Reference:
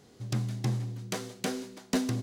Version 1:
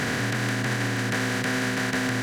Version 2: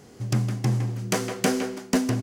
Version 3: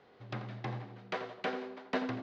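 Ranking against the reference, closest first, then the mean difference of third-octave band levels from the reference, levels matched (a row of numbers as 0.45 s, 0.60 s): 2, 3, 1; 2.5 dB, 8.5 dB, 12.0 dB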